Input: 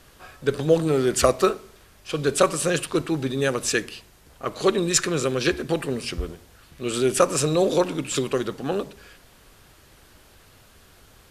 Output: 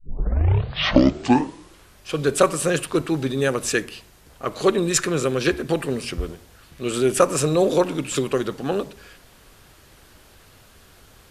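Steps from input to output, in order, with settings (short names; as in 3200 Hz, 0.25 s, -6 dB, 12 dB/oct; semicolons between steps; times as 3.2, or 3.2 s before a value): tape start at the beginning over 2.03 s; dynamic EQ 4700 Hz, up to -4 dB, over -38 dBFS, Q 0.86; gain +2 dB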